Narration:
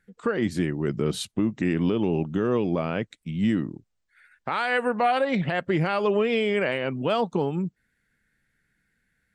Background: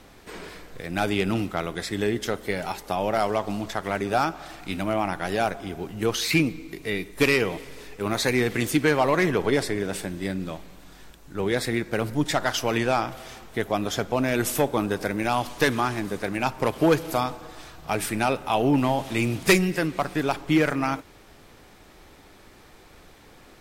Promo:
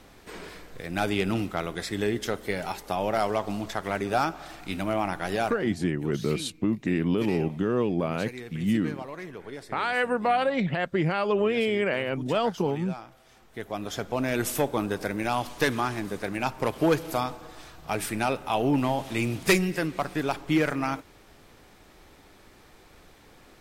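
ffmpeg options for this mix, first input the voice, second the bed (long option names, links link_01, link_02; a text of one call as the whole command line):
ffmpeg -i stem1.wav -i stem2.wav -filter_complex "[0:a]adelay=5250,volume=-1.5dB[link_01];[1:a]volume=12.5dB,afade=type=out:start_time=5.35:duration=0.47:silence=0.16788,afade=type=in:start_time=13.25:duration=1.07:silence=0.188365[link_02];[link_01][link_02]amix=inputs=2:normalize=0" out.wav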